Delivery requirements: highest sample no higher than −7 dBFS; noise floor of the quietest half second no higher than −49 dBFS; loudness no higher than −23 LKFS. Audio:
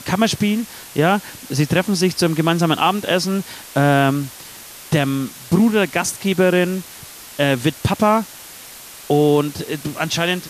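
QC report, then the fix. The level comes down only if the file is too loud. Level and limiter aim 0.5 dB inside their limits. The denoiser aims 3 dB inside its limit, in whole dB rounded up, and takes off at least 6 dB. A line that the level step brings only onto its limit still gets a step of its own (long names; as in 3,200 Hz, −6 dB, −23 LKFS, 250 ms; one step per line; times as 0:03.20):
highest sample −4.5 dBFS: out of spec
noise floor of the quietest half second −38 dBFS: out of spec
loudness −18.5 LKFS: out of spec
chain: broadband denoise 9 dB, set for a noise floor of −38 dBFS
level −5 dB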